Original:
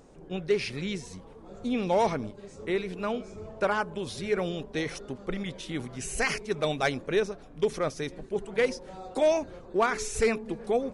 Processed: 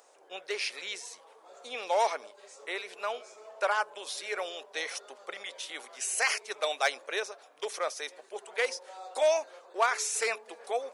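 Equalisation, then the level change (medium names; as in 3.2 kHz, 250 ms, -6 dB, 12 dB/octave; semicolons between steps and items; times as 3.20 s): high-pass 570 Hz 24 dB/octave; treble shelf 5.3 kHz +6.5 dB; 0.0 dB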